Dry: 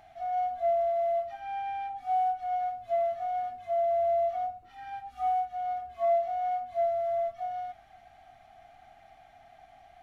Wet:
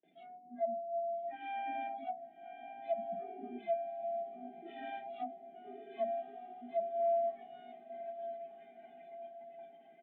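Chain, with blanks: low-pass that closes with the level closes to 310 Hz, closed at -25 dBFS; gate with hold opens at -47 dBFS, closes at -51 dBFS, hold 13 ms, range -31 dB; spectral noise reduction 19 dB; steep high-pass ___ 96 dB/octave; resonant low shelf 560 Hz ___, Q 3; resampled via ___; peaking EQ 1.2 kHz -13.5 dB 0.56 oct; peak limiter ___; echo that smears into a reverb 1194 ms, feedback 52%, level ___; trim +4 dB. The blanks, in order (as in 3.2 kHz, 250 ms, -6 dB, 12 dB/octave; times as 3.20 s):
160 Hz, +14 dB, 8 kHz, -30 dBFS, -11 dB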